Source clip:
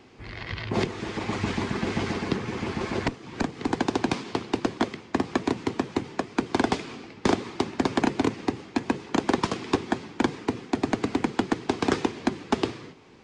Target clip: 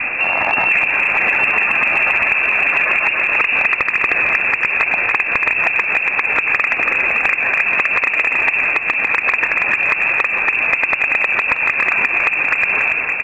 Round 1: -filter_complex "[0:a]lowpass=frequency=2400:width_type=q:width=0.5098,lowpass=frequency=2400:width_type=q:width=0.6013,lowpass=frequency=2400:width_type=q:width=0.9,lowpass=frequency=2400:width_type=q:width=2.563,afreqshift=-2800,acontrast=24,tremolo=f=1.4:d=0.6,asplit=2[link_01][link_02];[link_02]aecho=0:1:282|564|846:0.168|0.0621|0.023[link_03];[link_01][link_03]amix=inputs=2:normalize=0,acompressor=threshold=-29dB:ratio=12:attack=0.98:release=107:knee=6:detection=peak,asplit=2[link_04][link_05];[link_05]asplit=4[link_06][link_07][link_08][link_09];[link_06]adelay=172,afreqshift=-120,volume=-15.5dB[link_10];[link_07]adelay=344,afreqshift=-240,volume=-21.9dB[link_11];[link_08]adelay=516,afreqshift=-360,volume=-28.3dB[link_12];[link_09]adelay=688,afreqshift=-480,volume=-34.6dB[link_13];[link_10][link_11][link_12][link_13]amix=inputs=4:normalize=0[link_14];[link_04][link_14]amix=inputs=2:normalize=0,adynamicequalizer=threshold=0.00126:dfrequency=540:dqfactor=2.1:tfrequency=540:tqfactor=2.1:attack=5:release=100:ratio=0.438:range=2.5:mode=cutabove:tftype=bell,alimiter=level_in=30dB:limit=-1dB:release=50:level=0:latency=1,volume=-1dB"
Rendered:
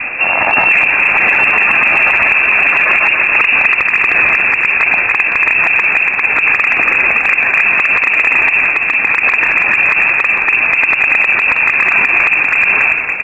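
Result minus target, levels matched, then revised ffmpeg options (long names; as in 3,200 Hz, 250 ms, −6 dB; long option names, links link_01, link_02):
downward compressor: peak gain reduction −9.5 dB
-filter_complex "[0:a]lowpass=frequency=2400:width_type=q:width=0.5098,lowpass=frequency=2400:width_type=q:width=0.6013,lowpass=frequency=2400:width_type=q:width=0.9,lowpass=frequency=2400:width_type=q:width=2.563,afreqshift=-2800,acontrast=24,tremolo=f=1.4:d=0.6,asplit=2[link_01][link_02];[link_02]aecho=0:1:282|564|846:0.168|0.0621|0.023[link_03];[link_01][link_03]amix=inputs=2:normalize=0,acompressor=threshold=-39.5dB:ratio=12:attack=0.98:release=107:knee=6:detection=peak,asplit=2[link_04][link_05];[link_05]asplit=4[link_06][link_07][link_08][link_09];[link_06]adelay=172,afreqshift=-120,volume=-15.5dB[link_10];[link_07]adelay=344,afreqshift=-240,volume=-21.9dB[link_11];[link_08]adelay=516,afreqshift=-360,volume=-28.3dB[link_12];[link_09]adelay=688,afreqshift=-480,volume=-34.6dB[link_13];[link_10][link_11][link_12][link_13]amix=inputs=4:normalize=0[link_14];[link_04][link_14]amix=inputs=2:normalize=0,adynamicequalizer=threshold=0.00126:dfrequency=540:dqfactor=2.1:tfrequency=540:tqfactor=2.1:attack=5:release=100:ratio=0.438:range=2.5:mode=cutabove:tftype=bell,alimiter=level_in=30dB:limit=-1dB:release=50:level=0:latency=1,volume=-1dB"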